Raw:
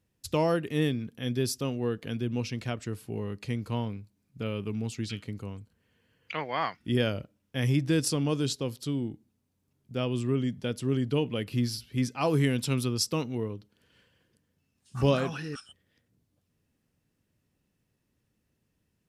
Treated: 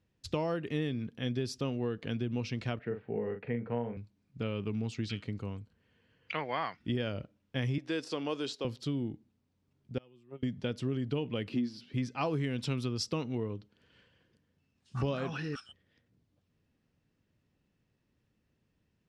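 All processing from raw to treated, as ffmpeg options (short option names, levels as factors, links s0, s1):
-filter_complex "[0:a]asettb=1/sr,asplit=3[s0][s1][s2];[s0]atrim=end=2.794[s3];[s1]atrim=start=2.79:end=3.97,asetpts=PTS-STARTPTS,afade=t=in:d=0.004:c=qsin,afade=t=out:st=1.176:d=0.004:c=qsin,highpass=160,equalizer=f=320:t=q:w=4:g=-7,equalizer=f=460:t=q:w=4:g=8,equalizer=f=760:t=q:w=4:g=4,equalizer=f=1100:t=q:w=4:g=-7,equalizer=f=1800:t=q:w=4:g=4,lowpass=f=2100:w=0.5412,lowpass=f=2100:w=1.3066,asplit=2[s4][s5];[s5]adelay=42,volume=0.447[s6];[s4][s6]amix=inputs=2:normalize=0,atrim=end_sample=52038[s7];[s2]atrim=start=3.966[s8];[s3][s7]acrossfade=d=0.004:c1=hsin:c2=qsin[s9];[s9][s8]acrossfade=d=0.004:c1=qsin:c2=hsin,asettb=1/sr,asplit=3[s10][s11][s12];[s10]atrim=end=7.784[s13];[s11]atrim=start=7.78:end=8.65,asetpts=PTS-STARTPTS,afade=t=in:d=0.004:c=qsin,afade=t=out:st=0.866:d=0.004:c=qsin,deesser=0.75,highpass=400[s14];[s12]atrim=start=8.646[s15];[s13][s14]acrossfade=d=0.004:c1=hsin:c2=qsin[s16];[s16][s15]acrossfade=d=0.004:c1=qsin:c2=hsin,asettb=1/sr,asplit=3[s17][s18][s19];[s17]atrim=end=9.984[s20];[s18]atrim=start=9.98:end=10.43,asetpts=PTS-STARTPTS,afade=t=in:d=0.004:c=qsin,afade=t=out:st=0.446:d=0.004:c=qsin,agate=range=0.0355:threshold=0.0708:ratio=16:release=100:detection=peak,highpass=140,aecho=1:1:5.6:0.39,atrim=end_sample=19845[s21];[s19]atrim=start=10.426[s22];[s20][s21]acrossfade=d=0.004:c1=hsin:c2=qsin[s23];[s23][s22]acrossfade=d=0.004:c1=qsin:c2=hsin,asettb=1/sr,asplit=3[s24][s25][s26];[s24]atrim=end=11.494[s27];[s25]atrim=start=11.49:end=11.94,asetpts=PTS-STARTPTS,afade=t=in:d=0.004:c=qsin,afade=t=out:st=0.446:d=0.004:c=qsin,deesser=0.9,highpass=f=240:t=q:w=2.1,highshelf=f=9900:g=-9.5[s28];[s26]atrim=start=11.936[s29];[s27][s28]acrossfade=d=0.004:c1=hsin:c2=qsin[s30];[s30][s29]acrossfade=d=0.004:c1=qsin:c2=hsin,lowpass=4800,acompressor=threshold=0.0355:ratio=6"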